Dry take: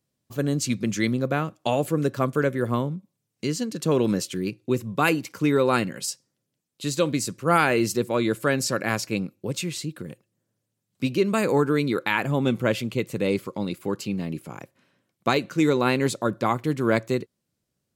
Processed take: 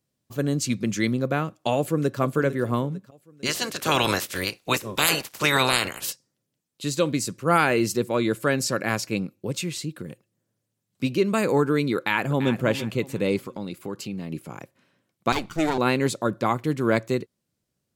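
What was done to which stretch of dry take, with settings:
0:01.76–0:02.20: delay throw 450 ms, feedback 40%, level −12.5 dB
0:03.45–0:06.11: ceiling on every frequency bin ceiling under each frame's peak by 29 dB
0:11.96–0:12.63: delay throw 340 ms, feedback 30%, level −11.5 dB
0:13.37–0:14.32: downward compressor 2 to 1, threshold −31 dBFS
0:15.32–0:15.78: lower of the sound and its delayed copy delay 0.86 ms

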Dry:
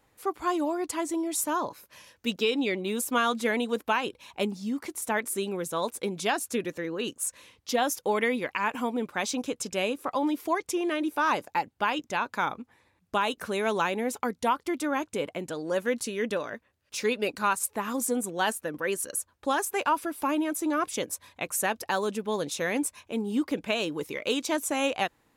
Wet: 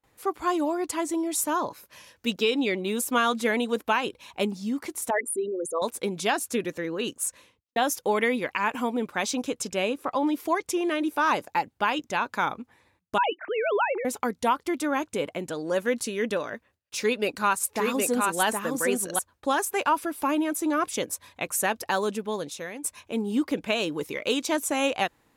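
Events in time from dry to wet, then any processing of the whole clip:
0:05.10–0:05.82: spectral envelope exaggerated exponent 3
0:07.25–0:07.76: fade out and dull
0:09.73–0:10.33: high-shelf EQ 5,400 Hz −6 dB
0:13.18–0:14.05: three sine waves on the formant tracks
0:16.99–0:19.19: single-tap delay 767 ms −3 dB
0:22.08–0:22.84: fade out, to −17 dB
whole clip: noise gate with hold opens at −57 dBFS; level +2 dB

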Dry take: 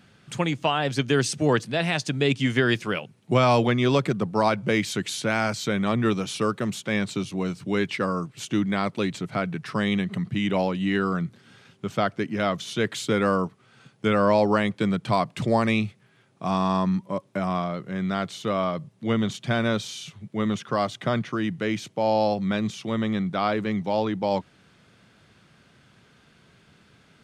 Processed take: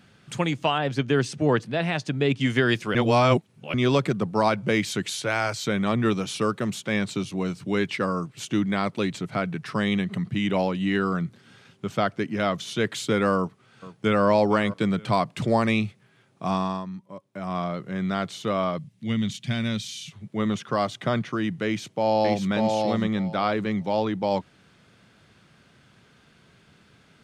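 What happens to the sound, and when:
0:00.78–0:02.41: high-shelf EQ 4,100 Hz −11.5 dB
0:02.95–0:03.74: reverse
0:05.10–0:05.66: parametric band 210 Hz −13 dB 0.6 octaves
0:13.36–0:14.27: delay throw 460 ms, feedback 40%, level −16.5 dB
0:16.51–0:17.66: duck −12 dB, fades 0.34 s linear
0:18.78–0:20.12: flat-topped bell 700 Hz −11.5 dB 2.5 octaves
0:21.65–0:22.48: delay throw 590 ms, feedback 15%, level −3 dB

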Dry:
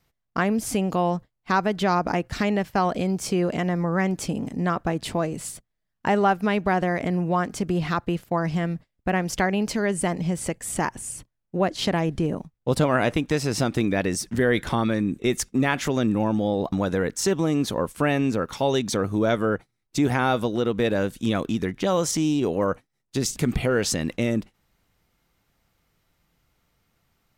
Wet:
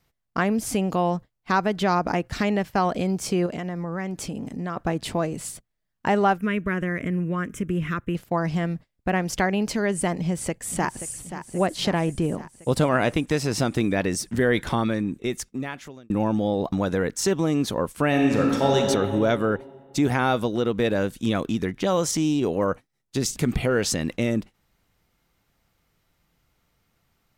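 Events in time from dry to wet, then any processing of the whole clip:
0:03.46–0:04.77: downward compressor 2 to 1, threshold −30 dBFS
0:06.38–0:08.15: phaser with its sweep stopped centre 1,900 Hz, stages 4
0:10.18–0:11.13: delay throw 530 ms, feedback 65%, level −11 dB
0:14.75–0:16.10: fade out
0:18.08–0:18.79: thrown reverb, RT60 2.3 s, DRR −0.5 dB

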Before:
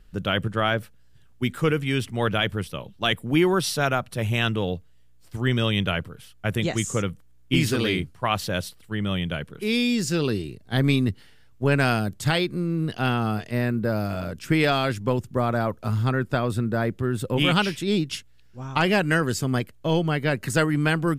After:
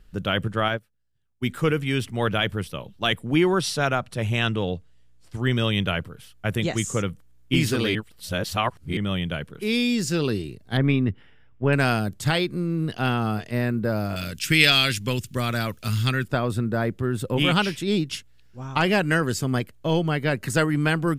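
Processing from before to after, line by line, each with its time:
0:00.68–0:01.46: expander for the loud parts 2.5 to 1, over −34 dBFS
0:03.18–0:05.41: low-pass filter 9,900 Hz
0:07.95–0:08.97: reverse
0:10.77–0:11.73: Savitzky-Golay smoothing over 25 samples
0:14.16–0:16.28: drawn EQ curve 160 Hz 0 dB, 860 Hz −8 dB, 2,700 Hz +12 dB

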